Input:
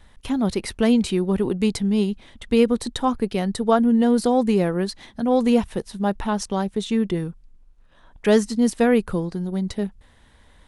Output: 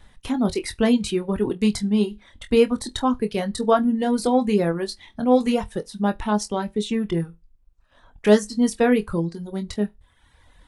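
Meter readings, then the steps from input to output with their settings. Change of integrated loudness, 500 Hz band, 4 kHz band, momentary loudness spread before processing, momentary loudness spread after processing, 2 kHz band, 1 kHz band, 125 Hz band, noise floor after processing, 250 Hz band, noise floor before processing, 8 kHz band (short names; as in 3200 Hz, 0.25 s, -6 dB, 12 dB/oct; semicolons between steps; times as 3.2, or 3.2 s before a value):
-0.5 dB, 0.0 dB, +0.5 dB, 9 LU, 10 LU, +0.5 dB, 0.0 dB, -1.5 dB, -59 dBFS, -1.5 dB, -54 dBFS, +0.5 dB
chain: on a send: flutter echo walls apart 4.1 m, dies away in 0.2 s; on the sum: reverb removal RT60 0.95 s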